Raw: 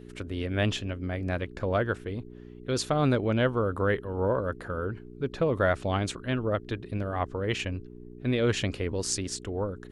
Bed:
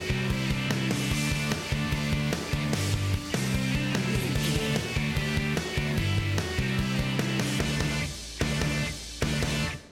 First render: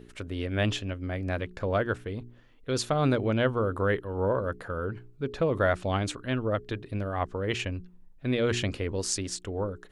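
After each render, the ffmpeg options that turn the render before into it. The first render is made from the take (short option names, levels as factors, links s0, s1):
-af "bandreject=f=60:t=h:w=4,bandreject=f=120:t=h:w=4,bandreject=f=180:t=h:w=4,bandreject=f=240:t=h:w=4,bandreject=f=300:t=h:w=4,bandreject=f=360:t=h:w=4,bandreject=f=420:t=h:w=4"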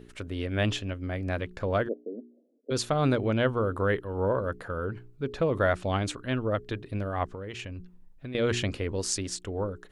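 -filter_complex "[0:a]asplit=3[s0][s1][s2];[s0]afade=t=out:st=1.87:d=0.02[s3];[s1]asuperpass=centerf=380:order=12:qfactor=0.87,afade=t=in:st=1.87:d=0.02,afade=t=out:st=2.7:d=0.02[s4];[s2]afade=t=in:st=2.7:d=0.02[s5];[s3][s4][s5]amix=inputs=3:normalize=0,asettb=1/sr,asplit=3[s6][s7][s8];[s6]atrim=end=7.284[s9];[s7]atrim=start=7.28:end=8.35,asetpts=PTS-STARTPTS,afade=t=in:d=0.004:c=qsin,afade=t=out:st=1.066:d=0.004:c=qsin,acompressor=threshold=0.02:ratio=12:attack=3.2:release=140:knee=1:detection=peak[s10];[s8]atrim=start=8.346[s11];[s9][s10]acrossfade=d=0.004:c1=hsin:c2=qsin[s12];[s12][s11]acrossfade=d=0.004:c1=qsin:c2=hsin"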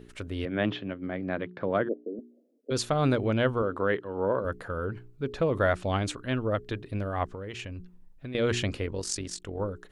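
-filter_complex "[0:a]asettb=1/sr,asplit=3[s0][s1][s2];[s0]atrim=end=0.454[s3];[s1]atrim=start=0.45:end=2.19,asetpts=PTS-STARTPTS,afade=t=in:d=0.004:c=qsin,afade=t=out:st=1.736:d=0.004:c=qsin,highpass=f=130:w=0.5412,highpass=f=130:w=1.3066,equalizer=f=170:t=q:w=4:g=4,equalizer=f=330:t=q:w=4:g=4,equalizer=f=2700:t=q:w=4:g=-6,lowpass=f=3400:w=0.5412,lowpass=f=3400:w=1.3066[s4];[s2]atrim=start=2.186[s5];[s3][s4]acrossfade=d=0.004:c1=hsin:c2=qsin[s6];[s6][s5]acrossfade=d=0.004:c1=qsin:c2=hsin,asettb=1/sr,asplit=3[s7][s8][s9];[s7]atrim=end=3.624[s10];[s8]atrim=start=3.62:end=4.45,asetpts=PTS-STARTPTS,afade=t=in:d=0.004:c=qsin,afade=t=out:st=0.826:d=0.004:c=qsin,highpass=160,lowpass=5200[s11];[s9]atrim=start=4.446[s12];[s10][s11]acrossfade=d=0.004:c1=hsin:c2=qsin[s13];[s13][s12]acrossfade=d=0.004:c1=qsin:c2=hsin,asettb=1/sr,asplit=3[s14][s15][s16];[s14]atrim=end=8.864[s17];[s15]atrim=start=8.86:end=9.61,asetpts=PTS-STARTPTS,afade=t=in:d=0.004:c=qsin,afade=t=out:st=0.746:d=0.004:c=qsin,tremolo=f=46:d=0.621[s18];[s16]atrim=start=9.606[s19];[s17][s18]acrossfade=d=0.004:c1=hsin:c2=qsin[s20];[s20][s19]acrossfade=d=0.004:c1=qsin:c2=hsin"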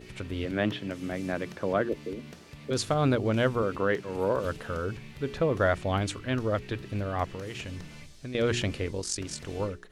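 -filter_complex "[1:a]volume=0.119[s0];[0:a][s0]amix=inputs=2:normalize=0"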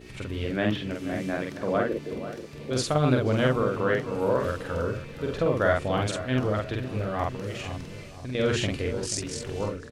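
-filter_complex "[0:a]asplit=2[s0][s1];[s1]adelay=47,volume=0.794[s2];[s0][s2]amix=inputs=2:normalize=0,asplit=2[s3][s4];[s4]adelay=485,lowpass=f=1400:p=1,volume=0.282,asplit=2[s5][s6];[s6]adelay=485,lowpass=f=1400:p=1,volume=0.48,asplit=2[s7][s8];[s8]adelay=485,lowpass=f=1400:p=1,volume=0.48,asplit=2[s9][s10];[s10]adelay=485,lowpass=f=1400:p=1,volume=0.48,asplit=2[s11][s12];[s12]adelay=485,lowpass=f=1400:p=1,volume=0.48[s13];[s3][s5][s7][s9][s11][s13]amix=inputs=6:normalize=0"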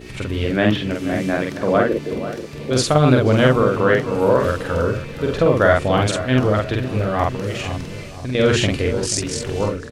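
-af "volume=2.82,alimiter=limit=0.708:level=0:latency=1"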